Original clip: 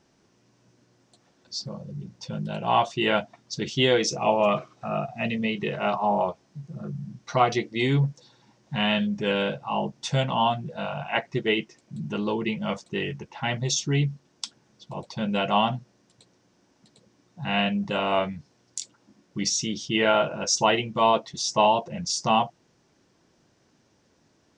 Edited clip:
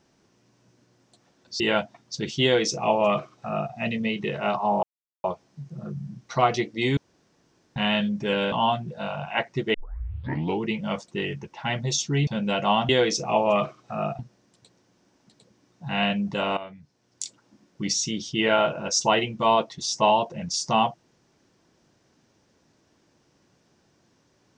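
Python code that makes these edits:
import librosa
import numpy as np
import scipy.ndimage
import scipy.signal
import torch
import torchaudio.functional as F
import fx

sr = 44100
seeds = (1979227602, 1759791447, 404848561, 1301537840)

y = fx.edit(x, sr, fx.cut(start_s=1.6, length_s=1.39),
    fx.duplicate(start_s=3.82, length_s=1.3, to_s=15.75),
    fx.insert_silence(at_s=6.22, length_s=0.41),
    fx.room_tone_fill(start_s=7.95, length_s=0.79),
    fx.cut(start_s=9.5, length_s=0.8),
    fx.tape_start(start_s=11.52, length_s=0.88),
    fx.cut(start_s=14.05, length_s=1.08),
    fx.fade_in_from(start_s=18.13, length_s=0.67, curve='qua', floor_db=-15.0), tone=tone)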